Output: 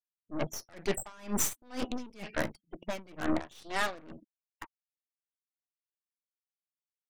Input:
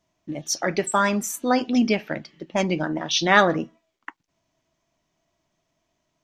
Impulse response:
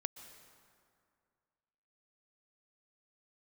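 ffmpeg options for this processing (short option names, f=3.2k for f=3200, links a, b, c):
-af "afftfilt=real='re*gte(hypot(re,im),0.00794)':imag='im*gte(hypot(re,im),0.00794)':win_size=1024:overlap=0.75,areverse,acompressor=threshold=-32dB:ratio=16,areverse,aeval=exprs='0.0668*(cos(1*acos(clip(val(0)/0.0668,-1,1)))-cos(1*PI/2))+0.000376*(cos(4*acos(clip(val(0)/0.0668,-1,1)))-cos(4*PI/2))+0.00237*(cos(5*acos(clip(val(0)/0.0668,-1,1)))-cos(5*PI/2))+0.00075*(cos(6*acos(clip(val(0)/0.0668,-1,1)))-cos(6*PI/2))+0.015*(cos(8*acos(clip(val(0)/0.0668,-1,1)))-cos(8*PI/2))':c=same,atempo=0.88,aeval=exprs='val(0)*pow(10,-27*(0.5-0.5*cos(2*PI*2.1*n/s))/20)':c=same,volume=6.5dB"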